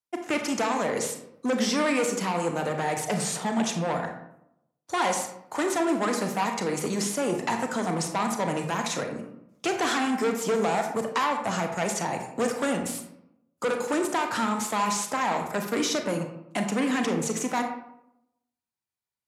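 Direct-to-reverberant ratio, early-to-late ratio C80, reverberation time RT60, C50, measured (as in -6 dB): 4.0 dB, 9.0 dB, 0.75 s, 6.5 dB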